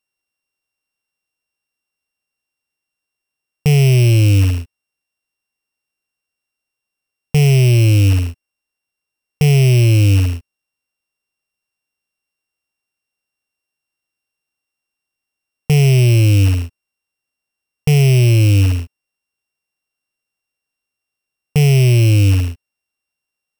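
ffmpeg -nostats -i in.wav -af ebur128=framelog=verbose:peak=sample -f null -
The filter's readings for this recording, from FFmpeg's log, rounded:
Integrated loudness:
  I:         -13.0 LUFS
  Threshold: -23.6 LUFS
Loudness range:
  LRA:         7.2 LU
  Threshold: -37.2 LUFS
  LRA low:   -21.8 LUFS
  LRA high:  -14.5 LUFS
Sample peak:
  Peak:       -9.1 dBFS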